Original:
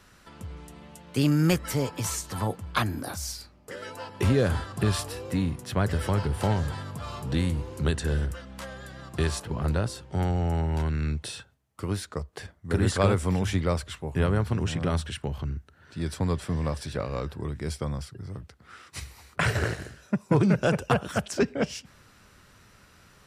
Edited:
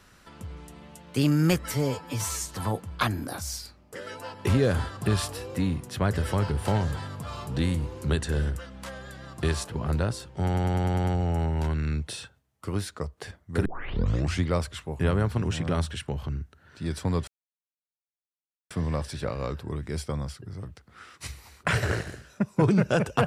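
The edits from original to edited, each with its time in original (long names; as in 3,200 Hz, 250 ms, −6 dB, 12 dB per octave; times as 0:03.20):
0:01.72–0:02.21: time-stretch 1.5×
0:10.19: stutter 0.10 s, 7 plays
0:12.81: tape start 0.78 s
0:16.43: splice in silence 1.43 s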